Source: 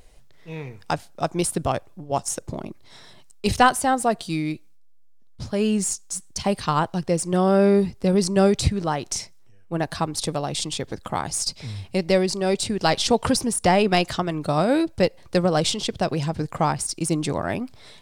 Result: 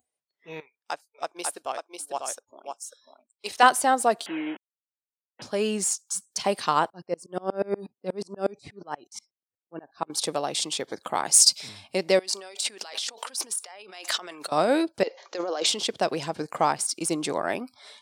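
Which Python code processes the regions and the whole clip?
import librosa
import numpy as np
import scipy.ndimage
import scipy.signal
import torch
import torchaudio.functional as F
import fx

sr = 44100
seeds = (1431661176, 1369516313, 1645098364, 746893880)

y = fx.chain(x, sr, fx.peak_eq(hz=150.0, db=-14.5, octaves=2.3),
    fx.echo_single(ms=545, db=-3.5),
    fx.upward_expand(threshold_db=-38.0, expansion=1.5), at=(0.6, 3.63))
y = fx.chain(y, sr, fx.delta_mod(bps=16000, step_db=-31.0),
    fx.highpass(hz=220.0, slope=24),
    fx.notch_comb(f0_hz=1200.0), at=(4.26, 5.42))
y = fx.chain(y, sr, fx.high_shelf(hz=2400.0, db=-6.5),
    fx.tremolo_decay(direction='swelling', hz=8.3, depth_db=33), at=(6.9, 10.1))
y = fx.chain(y, sr, fx.high_shelf(hz=3000.0, db=12.0),
    fx.band_widen(depth_pct=40), at=(11.22, 11.69))
y = fx.chain(y, sr, fx.over_compress(threshold_db=-31.0, ratio=-1.0),
    fx.highpass(hz=1300.0, slope=6), at=(12.19, 14.52))
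y = fx.chain(y, sr, fx.highpass(hz=300.0, slope=24),
    fx.over_compress(threshold_db=-28.0, ratio=-1.0),
    fx.resample_bad(factor=3, down='none', up='filtered'), at=(15.03, 15.66))
y = fx.noise_reduce_blind(y, sr, reduce_db=29)
y = scipy.signal.sosfilt(scipy.signal.butter(2, 340.0, 'highpass', fs=sr, output='sos'), y)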